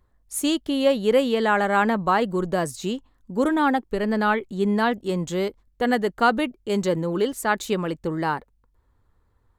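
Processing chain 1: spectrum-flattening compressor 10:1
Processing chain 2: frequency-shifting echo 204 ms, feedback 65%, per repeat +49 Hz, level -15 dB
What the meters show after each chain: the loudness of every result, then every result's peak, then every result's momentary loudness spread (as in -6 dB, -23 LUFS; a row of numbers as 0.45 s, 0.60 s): -24.5 LUFS, -23.0 LUFS; -7.0 dBFS, -6.5 dBFS; 6 LU, 9 LU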